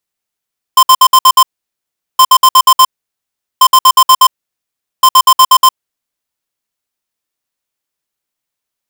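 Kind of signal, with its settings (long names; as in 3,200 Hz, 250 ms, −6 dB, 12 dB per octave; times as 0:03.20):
beeps in groups square 1,040 Hz, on 0.06 s, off 0.06 s, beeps 6, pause 0.76 s, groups 4, −4 dBFS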